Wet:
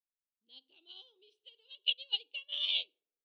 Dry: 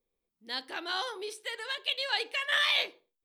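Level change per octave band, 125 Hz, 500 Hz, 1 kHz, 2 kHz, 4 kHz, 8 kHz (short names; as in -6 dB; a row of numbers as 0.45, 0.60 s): n/a, -23.5 dB, under -25 dB, -15.0 dB, -3.0 dB, under -25 dB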